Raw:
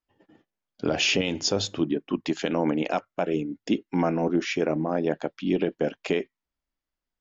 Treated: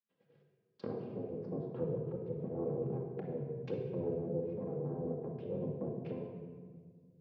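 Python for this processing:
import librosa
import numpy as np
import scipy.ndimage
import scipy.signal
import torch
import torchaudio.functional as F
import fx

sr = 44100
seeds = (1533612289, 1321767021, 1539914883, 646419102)

y = fx.lower_of_two(x, sr, delay_ms=3.5)
y = fx.env_lowpass_down(y, sr, base_hz=350.0, full_db=-25.5)
y = fx.rotary_switch(y, sr, hz=1.0, then_hz=5.0, switch_at_s=4.81)
y = y * np.sin(2.0 * np.pi * 170.0 * np.arange(len(y)) / sr)
y = fx.cabinet(y, sr, low_hz=150.0, low_slope=24, high_hz=4900.0, hz=(290.0, 750.0, 1400.0, 2000.0, 3100.0), db=(-5, -7, -3, -5, -3))
y = fx.room_shoebox(y, sr, seeds[0], volume_m3=2200.0, walls='mixed', distance_m=2.3)
y = y * librosa.db_to_amplitude(-4.5)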